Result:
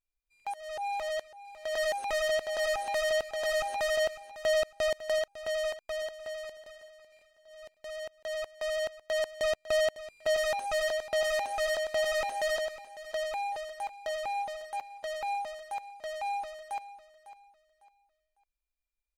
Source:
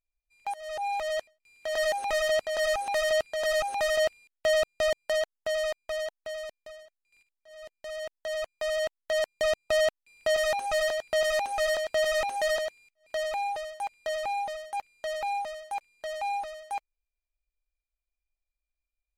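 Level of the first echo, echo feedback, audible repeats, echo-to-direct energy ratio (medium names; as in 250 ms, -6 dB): -15.0 dB, 29%, 2, -14.5 dB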